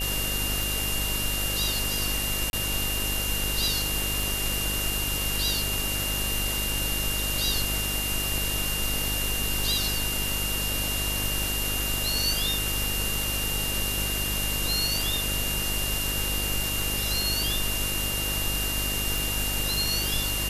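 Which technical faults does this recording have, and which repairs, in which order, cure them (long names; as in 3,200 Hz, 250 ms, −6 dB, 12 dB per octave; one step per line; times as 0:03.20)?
mains buzz 50 Hz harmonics 13 −33 dBFS
scratch tick 33 1/3 rpm
whistle 2,800 Hz −31 dBFS
0:02.50–0:02.53: drop-out 31 ms
0:19.18: click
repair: click removal
hum removal 50 Hz, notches 13
notch filter 2,800 Hz, Q 30
repair the gap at 0:02.50, 31 ms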